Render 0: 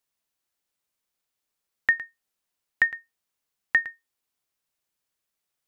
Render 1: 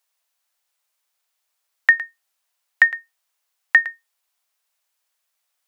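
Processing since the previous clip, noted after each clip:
high-pass filter 580 Hz 24 dB per octave
level +7.5 dB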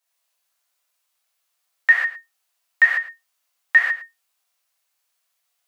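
reverb whose tail is shaped and stops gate 170 ms flat, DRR −7 dB
level −6 dB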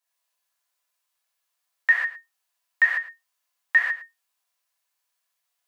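hollow resonant body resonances 1,000/1,700 Hz, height 7 dB
level −5 dB

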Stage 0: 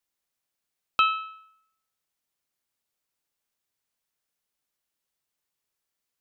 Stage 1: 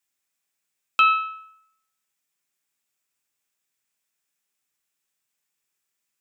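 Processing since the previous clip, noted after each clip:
convolution reverb RT60 0.40 s, pre-delay 3 ms, DRR 7 dB
level +3 dB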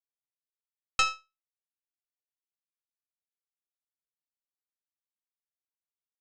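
power curve on the samples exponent 3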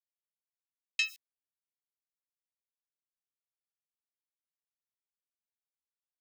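hold until the input has moved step −41.5 dBFS
Butterworth high-pass 1,800 Hz 72 dB per octave
phaser with staggered stages 3.3 Hz

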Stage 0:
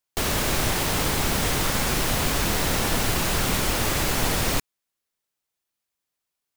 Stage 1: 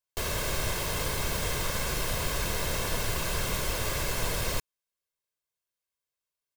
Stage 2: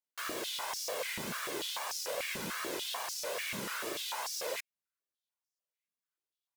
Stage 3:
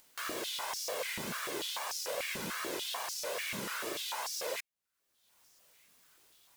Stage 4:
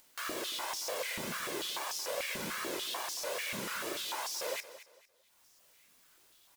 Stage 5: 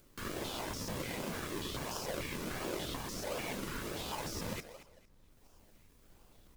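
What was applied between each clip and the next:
comb filter 1.9 ms, depth 51%; level −8 dB
tape wow and flutter 130 cents; high-pass on a step sequencer 6.8 Hz 210–5,400 Hz; level −8 dB
upward compression, threshold −42 dBFS
repeating echo 226 ms, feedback 29%, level −14.5 dB; on a send at −17 dB: convolution reverb, pre-delay 3 ms
background noise brown −63 dBFS; in parallel at +2.5 dB: sample-and-hold swept by an LFO 42×, swing 100% 1.4 Hz; on the sum: level −6.5 dB

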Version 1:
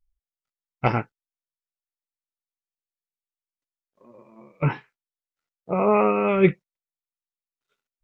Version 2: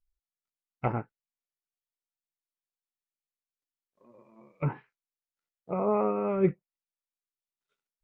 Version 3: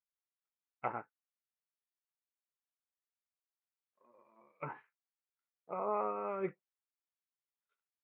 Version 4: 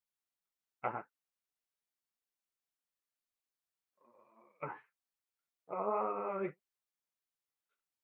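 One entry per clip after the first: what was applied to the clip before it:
treble cut that deepens with the level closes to 1,200 Hz, closed at −19 dBFS; level −7 dB
resonant band-pass 1,300 Hz, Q 0.88; level −3 dB
flanger 1.8 Hz, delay 2.3 ms, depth 8.8 ms, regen +30%; level +4 dB

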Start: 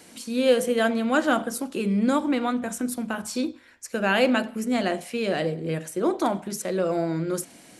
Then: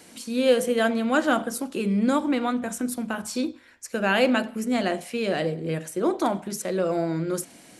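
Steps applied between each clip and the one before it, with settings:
no processing that can be heard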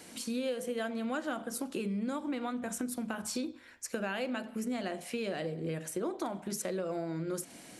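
downward compressor 6 to 1, threshold −31 dBFS, peak gain reduction 16 dB
level −1.5 dB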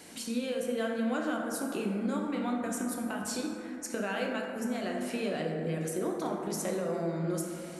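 dense smooth reverb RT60 2.8 s, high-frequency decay 0.3×, DRR 0.5 dB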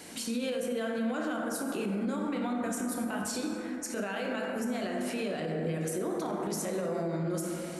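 brickwall limiter −28 dBFS, peak gain reduction 8 dB
level +3.5 dB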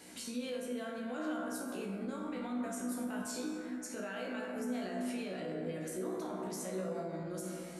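tuned comb filter 62 Hz, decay 0.31 s, harmonics all, mix 90%

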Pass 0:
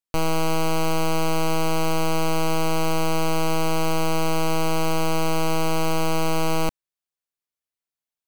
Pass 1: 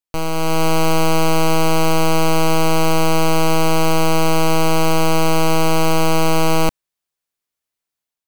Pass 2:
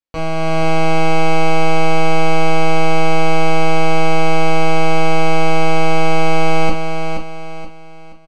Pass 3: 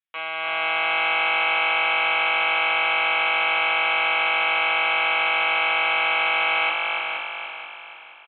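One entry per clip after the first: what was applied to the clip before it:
automatic gain control gain up to 7 dB
high-frequency loss of the air 120 metres; on a send: repeating echo 476 ms, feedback 36%, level −6.5 dB; on the sum: reverb whose tail is shaped and stops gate 80 ms falling, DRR −3.5 dB; level −3.5 dB
flat-topped band-pass 3,000 Hz, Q 0.6; echo with shifted repeats 289 ms, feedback 43%, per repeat +47 Hz, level −5 dB; downsampling to 8,000 Hz; level +2.5 dB

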